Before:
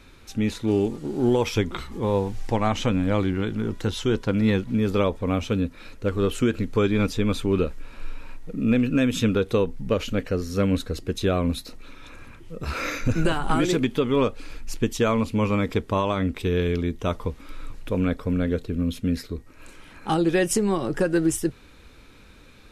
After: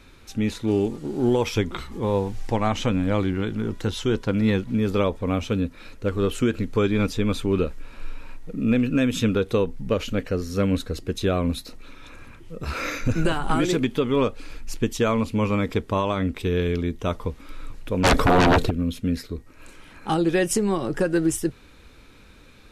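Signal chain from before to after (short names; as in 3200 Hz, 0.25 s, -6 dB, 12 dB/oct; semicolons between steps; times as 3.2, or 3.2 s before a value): 18.03–18.69 sine folder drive 17 dB -> 12 dB, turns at -12.5 dBFS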